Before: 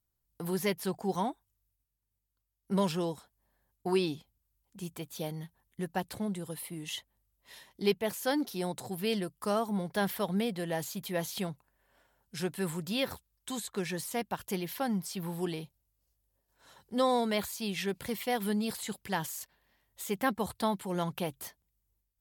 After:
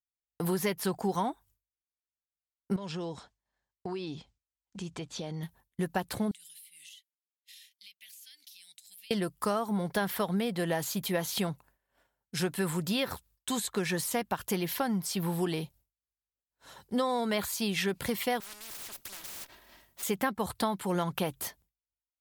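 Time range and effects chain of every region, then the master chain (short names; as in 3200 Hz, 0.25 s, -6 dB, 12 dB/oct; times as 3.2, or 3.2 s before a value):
2.76–5.43 LPF 7000 Hz 24 dB/oct + compressor 8:1, threshold -40 dBFS + mismatched tape noise reduction encoder only
6.31–9.11 inverse Chebyshev high-pass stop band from 1200 Hz + compressor 16:1, threshold -54 dBFS
18.4–20.03 minimum comb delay 3.1 ms + compressor 1.5:1, threshold -43 dBFS + spectral compressor 10:1
whole clip: expander -59 dBFS; dynamic EQ 1300 Hz, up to +4 dB, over -47 dBFS, Q 1.5; compressor 6:1, threshold -33 dBFS; gain +6.5 dB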